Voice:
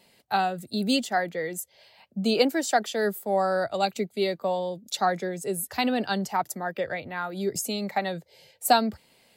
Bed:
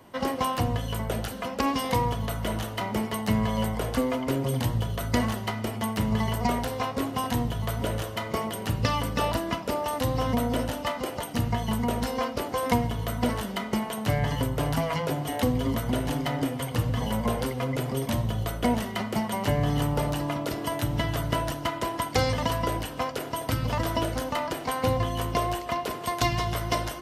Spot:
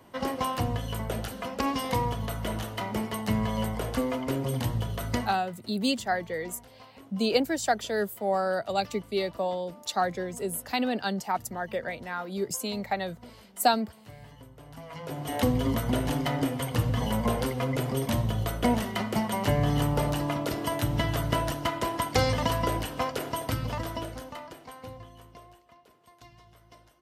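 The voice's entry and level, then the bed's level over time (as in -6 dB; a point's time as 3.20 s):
4.95 s, -2.5 dB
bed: 5.12 s -2.5 dB
5.51 s -22.5 dB
14.65 s -22.5 dB
15.37 s 0 dB
23.31 s 0 dB
25.74 s -28 dB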